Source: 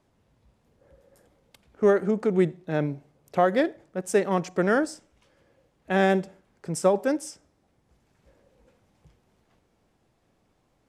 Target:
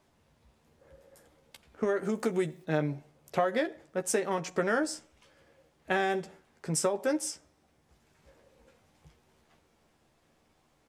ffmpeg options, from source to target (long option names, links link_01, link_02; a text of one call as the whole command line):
ffmpeg -i in.wav -filter_complex "[0:a]asettb=1/sr,asplit=3[link_01][link_02][link_03];[link_01]atrim=end=2.034[link_04];[link_02]atrim=start=2.03:end=2.64,asetpts=PTS-STARTPTS,afade=type=in:duration=0.004:curve=qsin,afade=type=out:start_time=0.606:duration=0.004:curve=qsin,aemphasis=mode=production:type=50fm[link_05];[link_03]atrim=start=2.636[link_06];[link_04][link_05]acrossfade=duration=0.004:curve1=hsin:curve2=qsin[link_07];[link_07][link_06]acrossfade=duration=0.004:curve1=qsin:curve2=hsin,acompressor=threshold=-24dB:ratio=10,tiltshelf=frequency=690:gain=-3,asplit=2[link_08][link_09];[link_09]adelay=13,volume=-6.5dB[link_10];[link_08][link_10]amix=inputs=2:normalize=0" out.wav